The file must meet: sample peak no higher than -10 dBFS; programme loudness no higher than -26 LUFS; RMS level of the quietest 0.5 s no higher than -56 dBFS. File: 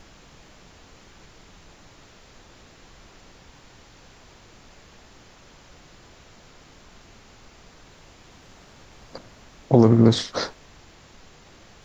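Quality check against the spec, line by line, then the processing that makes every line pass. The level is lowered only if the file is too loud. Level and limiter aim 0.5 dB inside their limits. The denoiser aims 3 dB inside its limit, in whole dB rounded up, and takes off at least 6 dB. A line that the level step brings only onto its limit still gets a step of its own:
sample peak -3.5 dBFS: fail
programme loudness -19.0 LUFS: fail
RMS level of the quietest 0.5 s -50 dBFS: fail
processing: gain -7.5 dB

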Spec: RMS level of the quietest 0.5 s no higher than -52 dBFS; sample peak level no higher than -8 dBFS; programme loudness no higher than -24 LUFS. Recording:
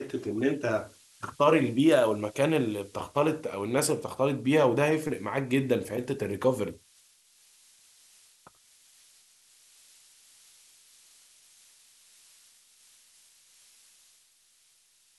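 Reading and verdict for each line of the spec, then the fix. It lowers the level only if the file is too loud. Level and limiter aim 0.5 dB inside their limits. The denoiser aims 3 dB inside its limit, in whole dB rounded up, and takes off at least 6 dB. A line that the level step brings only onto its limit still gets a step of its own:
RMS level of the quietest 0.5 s -64 dBFS: OK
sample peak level -10.0 dBFS: OK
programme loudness -27.0 LUFS: OK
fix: none

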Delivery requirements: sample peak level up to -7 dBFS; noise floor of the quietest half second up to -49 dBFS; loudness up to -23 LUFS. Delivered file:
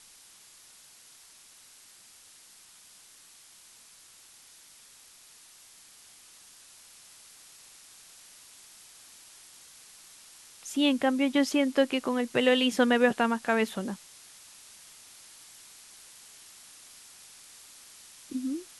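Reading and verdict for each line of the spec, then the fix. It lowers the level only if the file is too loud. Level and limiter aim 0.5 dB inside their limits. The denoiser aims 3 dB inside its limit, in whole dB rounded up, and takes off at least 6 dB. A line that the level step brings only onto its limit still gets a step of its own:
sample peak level -11.5 dBFS: OK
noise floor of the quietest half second -55 dBFS: OK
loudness -26.5 LUFS: OK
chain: none

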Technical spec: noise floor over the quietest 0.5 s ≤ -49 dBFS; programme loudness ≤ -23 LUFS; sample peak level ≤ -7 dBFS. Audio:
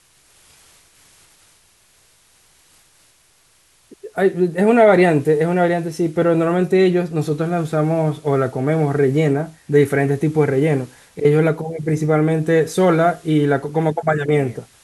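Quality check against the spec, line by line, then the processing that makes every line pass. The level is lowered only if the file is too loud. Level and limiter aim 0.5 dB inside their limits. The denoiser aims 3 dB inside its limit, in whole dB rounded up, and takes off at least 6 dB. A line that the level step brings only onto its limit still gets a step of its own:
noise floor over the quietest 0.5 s -56 dBFS: OK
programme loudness -17.5 LUFS: fail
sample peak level -3.0 dBFS: fail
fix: gain -6 dB

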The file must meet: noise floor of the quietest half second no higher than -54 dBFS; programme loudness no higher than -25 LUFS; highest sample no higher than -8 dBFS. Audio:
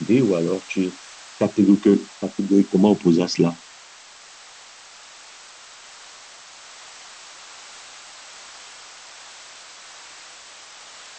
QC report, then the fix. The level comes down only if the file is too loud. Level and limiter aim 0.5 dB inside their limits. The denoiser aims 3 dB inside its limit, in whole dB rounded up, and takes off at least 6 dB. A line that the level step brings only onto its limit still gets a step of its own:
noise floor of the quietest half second -45 dBFS: fail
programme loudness -19.5 LUFS: fail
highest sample -5.0 dBFS: fail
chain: denoiser 6 dB, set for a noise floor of -45 dBFS; gain -6 dB

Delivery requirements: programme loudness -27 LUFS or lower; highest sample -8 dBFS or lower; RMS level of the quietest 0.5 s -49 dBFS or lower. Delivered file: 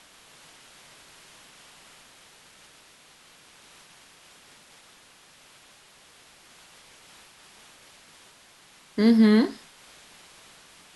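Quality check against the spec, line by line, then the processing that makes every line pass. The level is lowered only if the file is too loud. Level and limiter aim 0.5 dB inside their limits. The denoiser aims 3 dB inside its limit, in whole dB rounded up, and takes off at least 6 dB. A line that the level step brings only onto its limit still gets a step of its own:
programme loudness -20.5 LUFS: fail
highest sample -8.5 dBFS: OK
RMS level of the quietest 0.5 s -55 dBFS: OK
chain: gain -7 dB

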